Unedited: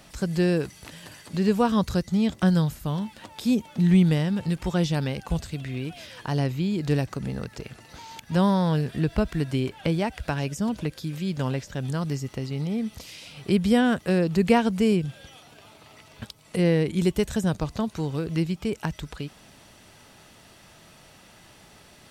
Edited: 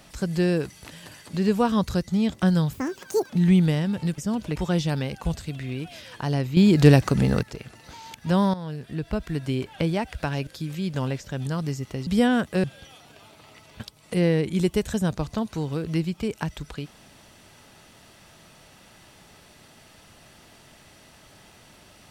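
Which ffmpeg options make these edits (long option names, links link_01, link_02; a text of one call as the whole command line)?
ffmpeg -i in.wav -filter_complex "[0:a]asplit=11[link_01][link_02][link_03][link_04][link_05][link_06][link_07][link_08][link_09][link_10][link_11];[link_01]atrim=end=2.734[link_12];[link_02]atrim=start=2.73:end=3.73,asetpts=PTS-STARTPTS,asetrate=77616,aresample=44100[link_13];[link_03]atrim=start=3.726:end=4.612[link_14];[link_04]atrim=start=10.518:end=10.902[link_15];[link_05]atrim=start=4.608:end=6.622[link_16];[link_06]atrim=start=6.618:end=7.482,asetpts=PTS-STARTPTS,volume=10dB[link_17];[link_07]atrim=start=7.478:end=8.59,asetpts=PTS-STARTPTS,afade=type=out:start_time=1.108:duration=0.004:curve=hsin:silence=0.211349[link_18];[link_08]atrim=start=8.59:end=10.522,asetpts=PTS-STARTPTS,afade=type=in:duration=1.13:silence=0.211349[link_19];[link_09]atrim=start=10.898:end=12.502[link_20];[link_10]atrim=start=13.598:end=14.172[link_21];[link_11]atrim=start=15.058[link_22];[link_12][link_13]acrossfade=duration=0.004:curve1=hsin:curve2=hsin[link_23];[link_23][link_14]acrossfade=duration=0.004:curve1=hsin:curve2=hsin[link_24];[link_24][link_15]acrossfade=duration=0.004:curve1=hsin:curve2=hsin[link_25];[link_25][link_16]acrossfade=duration=0.004:curve1=hsin:curve2=hsin[link_26];[link_26][link_17]acrossfade=duration=0.004:curve1=hsin:curve2=hsin[link_27];[link_18][link_19]concat=n=2:v=0:a=1[link_28];[link_27][link_28]acrossfade=duration=0.004:curve1=hsin:curve2=hsin[link_29];[link_29][link_20]acrossfade=duration=0.004:curve1=hsin:curve2=hsin[link_30];[link_30][link_21]acrossfade=duration=0.004:curve1=hsin:curve2=hsin[link_31];[link_31][link_22]acrossfade=duration=0.004:curve1=hsin:curve2=hsin" out.wav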